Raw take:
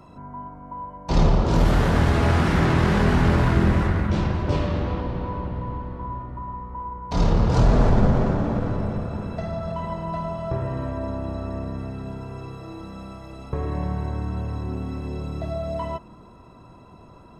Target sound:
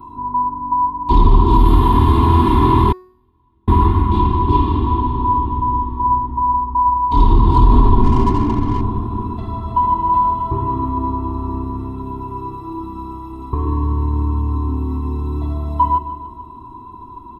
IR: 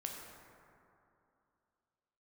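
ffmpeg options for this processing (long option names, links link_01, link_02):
-filter_complex "[0:a]firequalizer=gain_entry='entry(120,0);entry(180,4);entry(410,-3);entry(570,-29);entry(970,11);entry(1400,-17);entry(2100,-14);entry(3500,-2);entry(5700,-24);entry(11000,-1)':delay=0.05:min_phase=1,aecho=1:1:150|300|450|600|750|900:0.224|0.125|0.0702|0.0393|0.022|0.0123,asettb=1/sr,asplit=3[link_01][link_02][link_03];[link_01]atrim=end=2.924[link_04];[link_02]atrim=start=2.92:end=3.68,asetpts=PTS-STARTPTS,afade=type=in:duration=0.004:curve=qsin,afade=type=out:start_time=0.756:duration=0.004:curve=qsin,agate=range=-48dB:threshold=-7dB:ratio=16:detection=peak[link_05];[link_03]atrim=start=3.676[link_06];[link_04][link_05]acrossfade=duration=0.004:curve1=hsin:curve2=qsin[link_07];[link_07][link_06]acrossfade=duration=0.004:curve1=qsin:curve2=hsin,asettb=1/sr,asplit=3[link_08][link_09][link_10];[link_08]atrim=end=8.034[link_11];[link_09]atrim=start=8.03:end=8.81,asetpts=PTS-STARTPTS,afade=type=in:duration=0.004:curve=qsin,afade=type=out:start_time=0.776:duration=0.004:curve=qsin,adynamicsmooth=sensitivity=7.5:basefreq=700[link_12];[link_10]atrim=start=8.806[link_13];[link_11][link_12]acrossfade=duration=0.004:curve1=hsin:curve2=qsin[link_14];[link_14][link_13]acrossfade=duration=0.004:curve1=qsin:curve2=hsin,aecho=1:1:2.9:0.91,bandreject=frequency=367.9:width_type=h:width=4,bandreject=frequency=735.8:width_type=h:width=4,bandreject=frequency=1103.7:width_type=h:width=4,bandreject=frequency=1471.6:width_type=h:width=4,bandreject=frequency=1839.5:width_type=h:width=4,bandreject=frequency=2207.4:width_type=h:width=4,bandreject=frequency=2575.3:width_type=h:width=4,bandreject=frequency=2943.2:width_type=h:width=4,bandreject=frequency=3311.1:width_type=h:width=4,bandreject=frequency=3679:width_type=h:width=4,bandreject=frequency=4046.9:width_type=h:width=4,bandreject=frequency=4414.8:width_type=h:width=4,bandreject=frequency=4782.7:width_type=h:width=4,bandreject=frequency=5150.6:width_type=h:width=4,bandreject=frequency=5518.5:width_type=h:width=4,bandreject=frequency=5886.4:width_type=h:width=4,bandreject=frequency=6254.3:width_type=h:width=4,bandreject=frequency=6622.2:width_type=h:width=4,bandreject=frequency=6990.1:width_type=h:width=4,bandreject=frequency=7358:width_type=h:width=4,bandreject=frequency=7725.9:width_type=h:width=4,bandreject=frequency=8093.8:width_type=h:width=4,bandreject=frequency=8461.7:width_type=h:width=4,bandreject=frequency=8829.6:width_type=h:width=4,bandreject=frequency=9197.5:width_type=h:width=4,bandreject=frequency=9565.4:width_type=h:width=4,bandreject=frequency=9933.3:width_type=h:width=4,bandreject=frequency=10301.2:width_type=h:width=4,bandreject=frequency=10669.1:width_type=h:width=4,bandreject=frequency=11037:width_type=h:width=4,bandreject=frequency=11404.9:width_type=h:width=4,bandreject=frequency=11772.8:width_type=h:width=4,bandreject=frequency=12140.7:width_type=h:width=4,bandreject=frequency=12508.6:width_type=h:width=4,bandreject=frequency=12876.5:width_type=h:width=4,bandreject=frequency=13244.4:width_type=h:width=4,bandreject=frequency=13612.3:width_type=h:width=4,bandreject=frequency=13980.2:width_type=h:width=4,alimiter=level_in=6dB:limit=-1dB:release=50:level=0:latency=1,volume=-1dB"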